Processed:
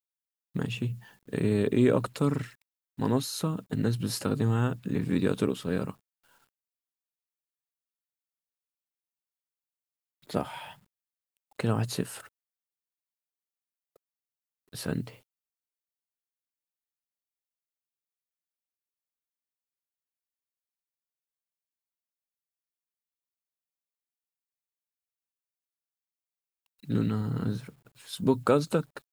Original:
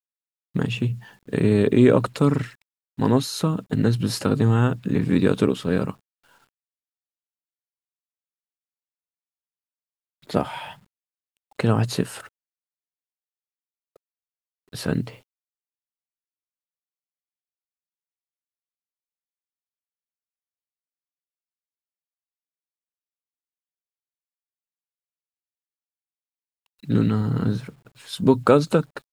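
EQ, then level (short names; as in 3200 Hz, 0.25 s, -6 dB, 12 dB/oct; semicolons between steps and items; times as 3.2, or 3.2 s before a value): high shelf 9100 Hz +9.5 dB; -7.5 dB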